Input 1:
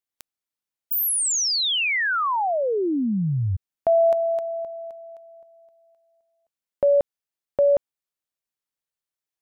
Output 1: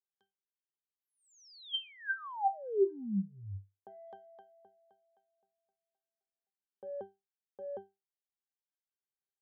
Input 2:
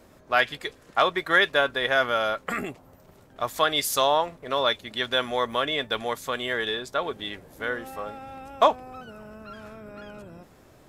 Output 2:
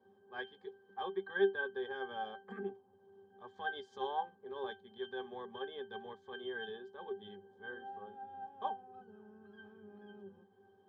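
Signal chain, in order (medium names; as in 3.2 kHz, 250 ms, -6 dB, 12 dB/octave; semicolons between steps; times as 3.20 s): cabinet simulation 260–7000 Hz, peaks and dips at 350 Hz +4 dB, 1.2 kHz +8 dB, 2 kHz -7 dB; transient shaper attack -8 dB, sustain -3 dB; pitch-class resonator G, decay 0.22 s; trim +3.5 dB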